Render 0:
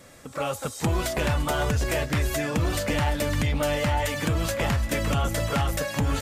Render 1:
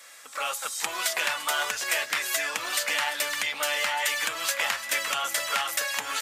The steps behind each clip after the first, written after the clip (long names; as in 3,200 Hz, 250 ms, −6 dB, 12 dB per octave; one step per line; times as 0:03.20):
high-pass filter 1,300 Hz 12 dB per octave
level +5.5 dB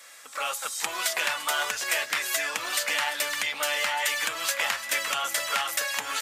no processing that can be heard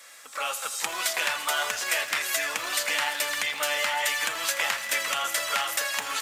feedback echo at a low word length 82 ms, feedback 80%, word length 8 bits, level −14.5 dB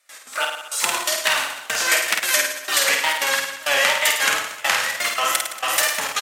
tape wow and flutter 130 cents
gate pattern ".x.xx...xxx" 168 BPM −24 dB
on a send: reverse bouncing-ball delay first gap 50 ms, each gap 1.1×, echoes 5
on the sum: level +7.5 dB